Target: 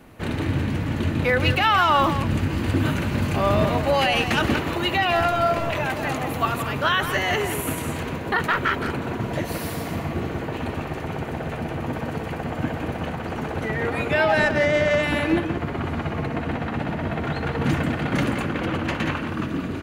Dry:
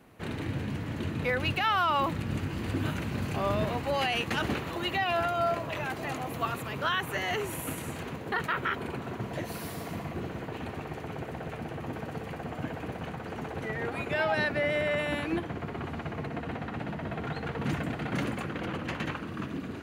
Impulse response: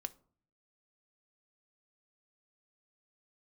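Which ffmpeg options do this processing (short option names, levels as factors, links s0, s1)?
-filter_complex "[0:a]asettb=1/sr,asplit=3[s0][s1][s2];[s0]atrim=end=14.394[s3];[s1]atrim=start=14.39:end=15.03,asetpts=PTS-STARTPTS,afade=t=in:d=0.004:c=qsin,afade=t=out:st=0.636:d=0.004:c=qsin,adynamicsmooth=sensitivity=3:basefreq=1900[s4];[s2]atrim=start=15.026[s5];[s3][s4]acrossfade=d=0.004:c1=hsin:c2=qsin[s6];[s6][s5]acrossfade=d=0.004:c1=qsin:c2=hsin,asplit=2[s7][s8];[s8]adelay=170,highpass=300,lowpass=3400,asoftclip=type=hard:threshold=0.0473,volume=0.447[s9];[s7][s9]amix=inputs=2:normalize=0,asplit=2[s10][s11];[1:a]atrim=start_sample=2205,lowshelf=f=85:g=10[s12];[s11][s12]afir=irnorm=-1:irlink=0,volume=2[s13];[s10][s13]amix=inputs=2:normalize=0"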